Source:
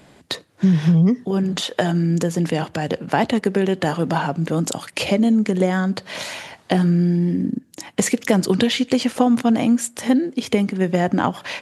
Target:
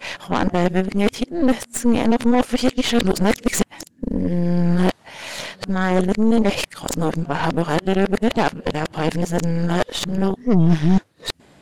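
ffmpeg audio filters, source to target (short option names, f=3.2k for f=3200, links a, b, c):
-af "areverse,aeval=exprs='0.794*(cos(1*acos(clip(val(0)/0.794,-1,1)))-cos(1*PI/2))+0.1*(cos(8*acos(clip(val(0)/0.794,-1,1)))-cos(8*PI/2))':c=same,volume=-1dB"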